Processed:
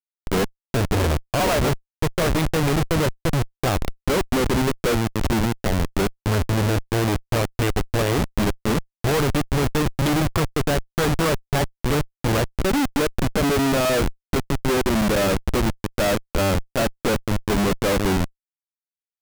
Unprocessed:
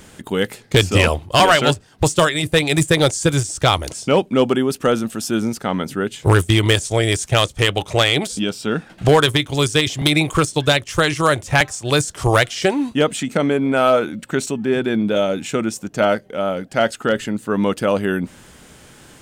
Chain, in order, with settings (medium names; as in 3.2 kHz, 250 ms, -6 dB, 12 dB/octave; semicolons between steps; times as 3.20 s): low-pass that closes with the level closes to 1.2 kHz, closed at -10.5 dBFS; Schmitt trigger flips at -20 dBFS